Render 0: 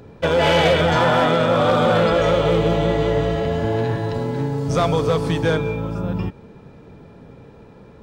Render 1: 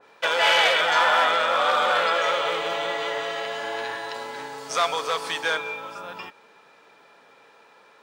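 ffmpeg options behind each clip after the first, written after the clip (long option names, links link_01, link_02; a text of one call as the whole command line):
ffmpeg -i in.wav -af "highpass=1100,adynamicequalizer=threshold=0.0224:dfrequency=2500:dqfactor=0.7:tfrequency=2500:tqfactor=0.7:attack=5:release=100:ratio=0.375:range=1.5:mode=cutabove:tftype=highshelf,volume=3.5dB" out.wav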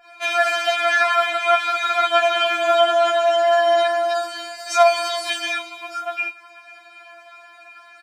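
ffmpeg -i in.wav -af "alimiter=limit=-17.5dB:level=0:latency=1:release=32,aecho=1:1:4.2:0.97,afftfilt=real='re*4*eq(mod(b,16),0)':imag='im*4*eq(mod(b,16),0)':win_size=2048:overlap=0.75,volume=7dB" out.wav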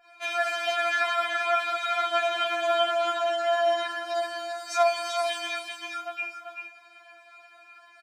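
ffmpeg -i in.wav -af "aecho=1:1:389:0.501,volume=-8.5dB" out.wav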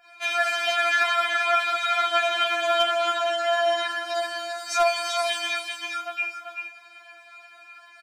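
ffmpeg -i in.wav -filter_complex "[0:a]acrossover=split=1200[link_01][link_02];[link_02]acontrast=34[link_03];[link_01][link_03]amix=inputs=2:normalize=0,asoftclip=type=hard:threshold=-13.5dB" out.wav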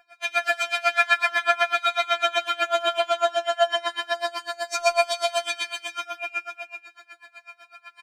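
ffmpeg -i in.wav -filter_complex "[0:a]asplit=2[link_01][link_02];[link_02]aecho=0:1:107.9|145.8|233.2:0.794|0.501|0.316[link_03];[link_01][link_03]amix=inputs=2:normalize=0,aeval=exprs='val(0)*pow(10,-24*(0.5-0.5*cos(2*PI*8*n/s))/20)':channel_layout=same,volume=2.5dB" out.wav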